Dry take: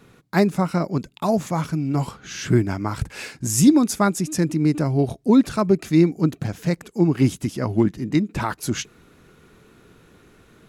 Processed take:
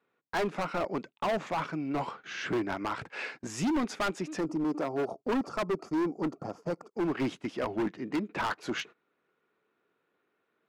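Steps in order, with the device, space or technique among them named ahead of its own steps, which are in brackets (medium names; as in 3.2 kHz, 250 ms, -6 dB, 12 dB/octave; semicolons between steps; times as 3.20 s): 4.41–6.92 s: time-frequency box 1.4–4.4 kHz -18 dB; walkie-talkie (band-pass 450–2600 Hz; hard clipper -26.5 dBFS, distortion -5 dB; gate -45 dBFS, range -20 dB); 4.64–5.13 s: high-pass 180 Hz; bass shelf 130 Hz +5 dB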